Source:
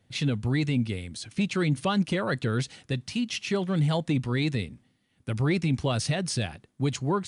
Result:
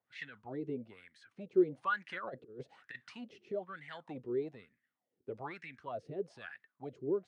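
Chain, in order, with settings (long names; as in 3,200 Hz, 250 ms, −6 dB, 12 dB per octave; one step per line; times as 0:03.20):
LFO wah 1.1 Hz 380–1,900 Hz, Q 8.7
rotating-speaker cabinet horn 7.5 Hz, later 0.85 Hz, at 0:00.28
0:02.09–0:03.52: compressor whose output falls as the input rises −49 dBFS, ratio −0.5
level +6 dB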